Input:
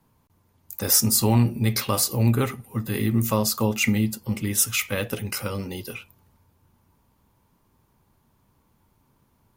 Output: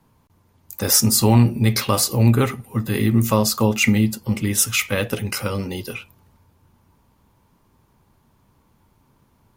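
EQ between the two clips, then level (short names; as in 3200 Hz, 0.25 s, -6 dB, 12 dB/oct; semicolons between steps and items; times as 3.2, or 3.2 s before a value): high shelf 11000 Hz -6.5 dB; +5.0 dB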